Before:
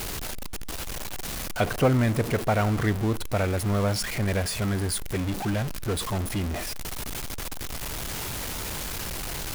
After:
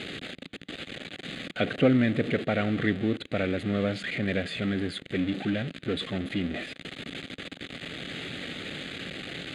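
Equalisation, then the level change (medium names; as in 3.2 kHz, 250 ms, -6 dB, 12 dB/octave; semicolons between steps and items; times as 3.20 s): cabinet simulation 170–6000 Hz, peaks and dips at 170 Hz +4 dB, 270 Hz +6 dB, 530 Hz +3 dB, 1.1 kHz +6 dB, 1.9 kHz +3 dB, 3.6 kHz +6 dB; static phaser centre 2.4 kHz, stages 4; 0.0 dB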